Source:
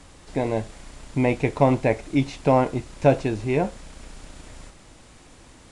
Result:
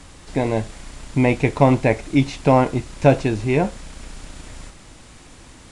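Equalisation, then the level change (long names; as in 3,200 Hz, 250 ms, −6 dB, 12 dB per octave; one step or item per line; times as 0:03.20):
parametric band 550 Hz −3 dB 1.6 octaves
+5.5 dB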